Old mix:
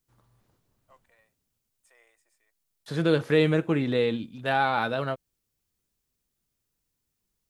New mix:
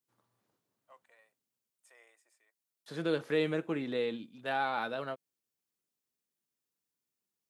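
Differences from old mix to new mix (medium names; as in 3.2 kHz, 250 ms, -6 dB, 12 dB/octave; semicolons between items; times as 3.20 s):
second voice -8.0 dB; master: add high-pass 210 Hz 12 dB/octave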